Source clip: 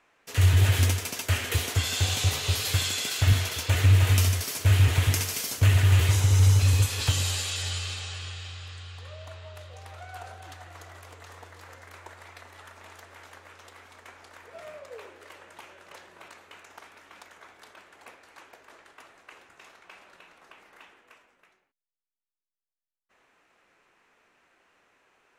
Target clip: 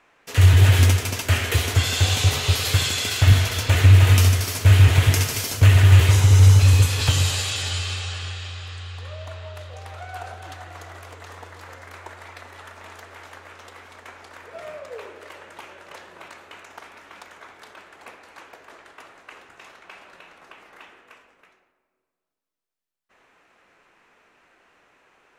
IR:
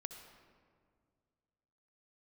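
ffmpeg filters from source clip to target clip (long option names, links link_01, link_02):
-filter_complex "[0:a]asplit=2[link_01][link_02];[1:a]atrim=start_sample=2205,highshelf=frequency=6500:gain=-10.5[link_03];[link_02][link_03]afir=irnorm=-1:irlink=0,volume=5dB[link_04];[link_01][link_04]amix=inputs=2:normalize=0"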